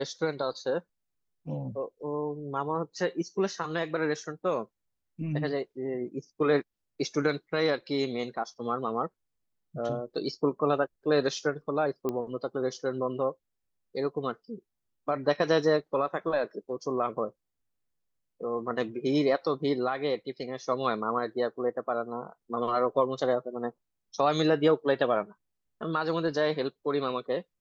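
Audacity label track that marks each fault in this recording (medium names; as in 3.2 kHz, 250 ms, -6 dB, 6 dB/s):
12.090000	12.090000	pop -19 dBFS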